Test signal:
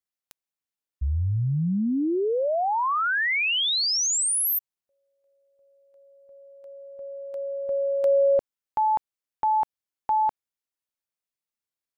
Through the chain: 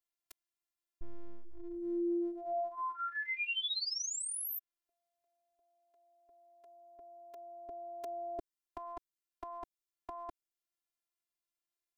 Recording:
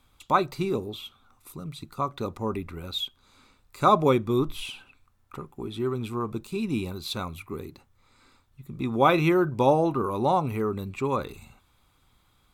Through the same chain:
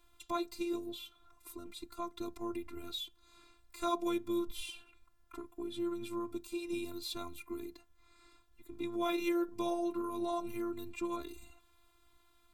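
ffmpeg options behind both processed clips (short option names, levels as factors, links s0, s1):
-filter_complex "[0:a]afftfilt=real='hypot(re,im)*cos(PI*b)':imag='0':win_size=512:overlap=0.75,acrossover=split=410|3800[s0][s1][s2];[s0]acompressor=threshold=0.00891:ratio=2[s3];[s1]acompressor=threshold=0.00126:ratio=1.5[s4];[s2]acompressor=threshold=0.01:ratio=4[s5];[s3][s4][s5]amix=inputs=3:normalize=0"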